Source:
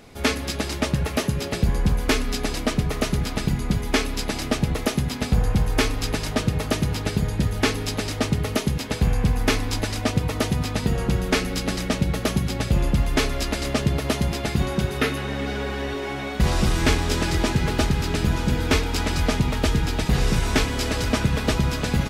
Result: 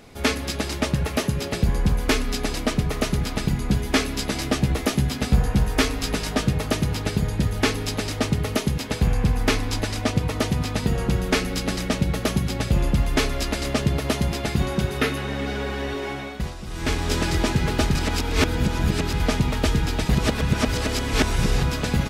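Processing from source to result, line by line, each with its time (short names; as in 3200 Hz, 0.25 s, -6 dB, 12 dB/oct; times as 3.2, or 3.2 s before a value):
3.68–6.53 doubler 15 ms -6 dB
9.07–10.68 Doppler distortion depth 0.12 ms
16.08–17.13 dip -15.5 dB, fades 0.47 s
17.95–19.2 reverse
20.15–21.63 reverse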